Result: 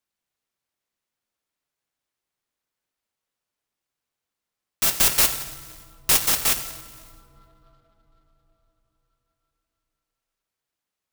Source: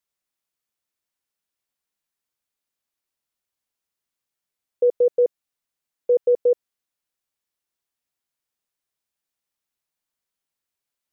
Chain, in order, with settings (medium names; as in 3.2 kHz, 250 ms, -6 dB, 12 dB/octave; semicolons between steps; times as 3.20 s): bit-reversed sample order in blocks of 256 samples; 4.93–6.27 s: tone controls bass +6 dB, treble +3 dB; plate-style reverb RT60 4.9 s, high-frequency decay 0.25×, DRR 3 dB; delay time shaken by noise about 2.3 kHz, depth 0.039 ms